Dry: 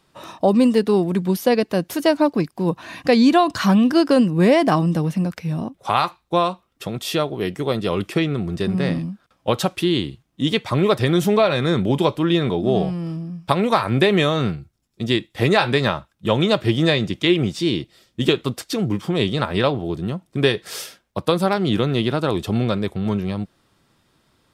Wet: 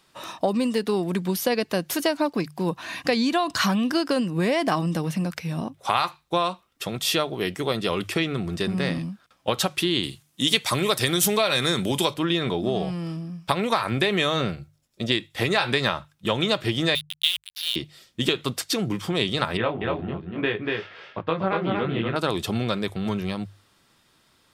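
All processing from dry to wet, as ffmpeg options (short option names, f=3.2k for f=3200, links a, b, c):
-filter_complex "[0:a]asettb=1/sr,asplit=3[a][b][c];[a]atrim=end=10.034[d];[b]atrim=start=10.03:end=12.14,asetpts=PTS-STARTPTS,afade=t=in:d=0.004:c=qsin,afade=t=out:st=2.106:d=0.004:c=qsin,highpass=82,equalizer=f=11k:w=0.37:g=14[e];[c]atrim=start=12.136[f];[d][e]acrossfade=d=0.004:c1=hsin:c2=qsin[g];[g][f]acrossfade=d=0.004:c1=qsin:c2=hsin,asettb=1/sr,asplit=3[h][i][j];[h]atrim=end=14.404[k];[i]atrim=start=14.4:end=15.12,asetpts=PTS-STARTPTS,afade=t=in:d=0.004:c=qsin,afade=t=out:st=0.716:d=0.004:c=qsin,acrossover=split=5900[l][m];[m]acompressor=threshold=-54dB:ratio=4:attack=1:release=60[n];[l][n]amix=inputs=2:normalize=0,equalizer=f=570:t=o:w=0.33:g=11[o];[j]atrim=start=15.116[p];[k][o]acrossfade=d=0.004:c1=hsin:c2=qsin[q];[q][p]acrossfade=d=0.004:c1=qsin:c2=hsin,asettb=1/sr,asplit=3[r][s][t];[r]atrim=end=16.954[u];[s]atrim=start=16.95:end=17.76,asetpts=PTS-STARTPTS,afade=t=in:d=0.004:c=qsin,afade=t=out:st=0.806:d=0.004:c=qsin,asuperpass=centerf=3500:order=4:qfactor=2.3,acrusher=bits=4:mix=0:aa=0.5[v];[t]atrim=start=17.756[w];[u][v]acrossfade=d=0.004:c1=hsin:c2=qsin[x];[x][w]acrossfade=d=0.004:c1=qsin:c2=hsin,asettb=1/sr,asplit=3[y][z][aa];[y]atrim=end=19.574[ab];[z]atrim=start=19.57:end=22.16,asetpts=PTS-STARTPTS,afade=t=in:d=0.004:c=qsin,afade=t=out:st=2.586:d=0.004:c=qsin,lowpass=f=2.6k:w=0.5412,lowpass=f=2.6k:w=1.3066,flanger=delay=17.5:depth=5.2:speed=1.2,aecho=1:1:239:0.668,atrim=end_sample=114219[ac];[aa]atrim=start=22.156[ad];[ab][ac]acrossfade=d=0.004:c1=hsin:c2=qsin[ae];[ae][ad]acrossfade=d=0.004:c1=qsin:c2=hsin,acompressor=threshold=-17dB:ratio=6,tiltshelf=f=970:g=-4,bandreject=f=50:t=h:w=6,bandreject=f=100:t=h:w=6,bandreject=f=150:t=h:w=6"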